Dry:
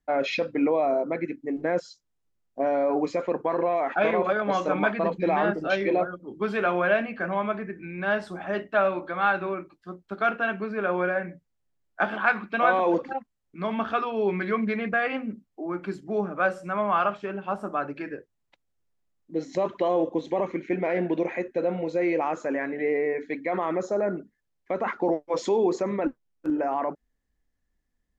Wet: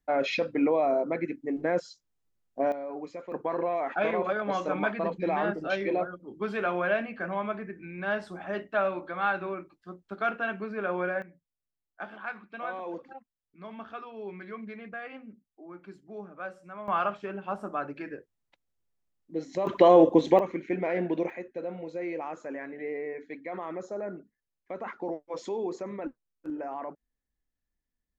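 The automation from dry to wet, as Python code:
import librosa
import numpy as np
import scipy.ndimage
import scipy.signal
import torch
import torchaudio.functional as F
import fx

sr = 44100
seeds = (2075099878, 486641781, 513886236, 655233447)

y = fx.gain(x, sr, db=fx.steps((0.0, -1.5), (2.72, -13.0), (3.32, -4.5), (11.22, -14.5), (16.88, -4.0), (19.67, 7.0), (20.39, -3.0), (21.3, -9.5)))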